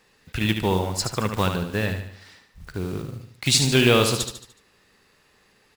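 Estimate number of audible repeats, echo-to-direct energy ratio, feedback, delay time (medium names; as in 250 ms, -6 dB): 5, -6.0 dB, 46%, 74 ms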